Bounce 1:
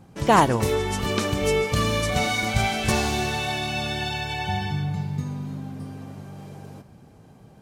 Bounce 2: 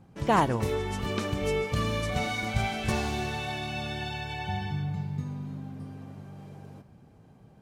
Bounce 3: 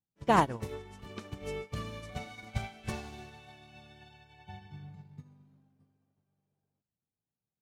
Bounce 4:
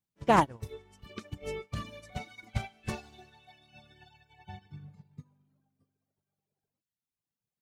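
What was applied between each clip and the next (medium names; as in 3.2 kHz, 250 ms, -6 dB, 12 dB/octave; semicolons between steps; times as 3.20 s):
tone controls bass +2 dB, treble -5 dB; trim -6.5 dB
upward expansion 2.5:1, over -47 dBFS
reverb removal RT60 1.8 s; loudspeaker Doppler distortion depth 0.12 ms; trim +2 dB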